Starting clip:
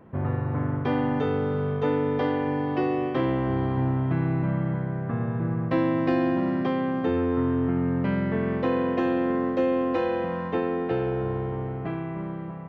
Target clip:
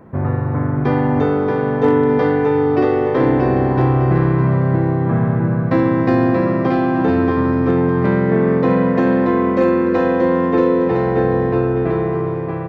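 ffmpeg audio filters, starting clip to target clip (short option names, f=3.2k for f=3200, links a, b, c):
-filter_complex "[0:a]equalizer=f=3k:t=o:w=0.46:g=-9,asplit=2[a][b];[b]aecho=0:1:630|1008|1235|1371|1453:0.631|0.398|0.251|0.158|0.1[c];[a][c]amix=inputs=2:normalize=0,asoftclip=type=hard:threshold=-13dB,volume=8dB"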